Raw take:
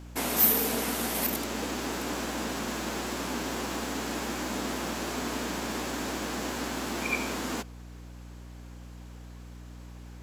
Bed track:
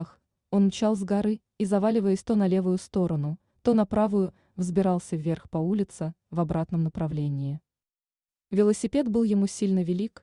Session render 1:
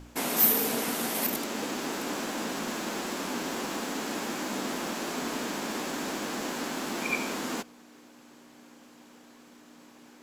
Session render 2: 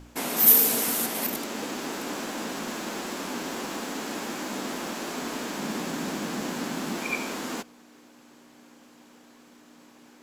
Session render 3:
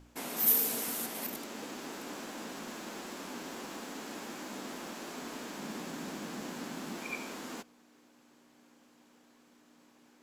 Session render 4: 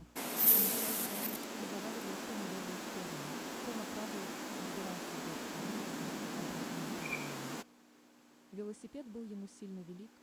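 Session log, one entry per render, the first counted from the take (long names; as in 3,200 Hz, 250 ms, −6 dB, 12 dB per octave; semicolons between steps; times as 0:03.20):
hum removal 60 Hz, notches 3
0:00.46–0:01.05: high-shelf EQ 4,300 Hz → 7,500 Hz +11 dB; 0:05.59–0:06.98: parametric band 170 Hz +9 dB 0.98 octaves
level −9.5 dB
mix in bed track −22.5 dB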